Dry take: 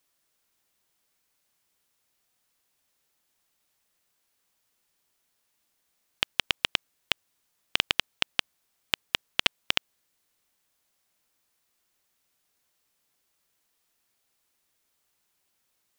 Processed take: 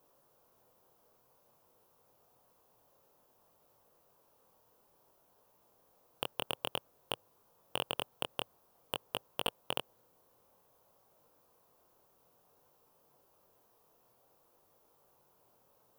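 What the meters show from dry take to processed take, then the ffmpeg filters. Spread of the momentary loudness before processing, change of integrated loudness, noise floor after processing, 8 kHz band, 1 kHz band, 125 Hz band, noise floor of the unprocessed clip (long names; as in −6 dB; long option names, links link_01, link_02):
6 LU, −11.0 dB, −70 dBFS, −7.5 dB, −3.0 dB, −3.5 dB, −75 dBFS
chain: -af "asoftclip=type=hard:threshold=-19dB,flanger=delay=19:depth=6.2:speed=0.54,equalizer=frequency=125:width_type=o:width=1:gain=7,equalizer=frequency=500:width_type=o:width=1:gain=11,equalizer=frequency=1000:width_type=o:width=1:gain=8,equalizer=frequency=2000:width_type=o:width=1:gain=-12,equalizer=frequency=4000:width_type=o:width=1:gain=-7,equalizer=frequency=8000:width_type=o:width=1:gain=-10,volume=10dB"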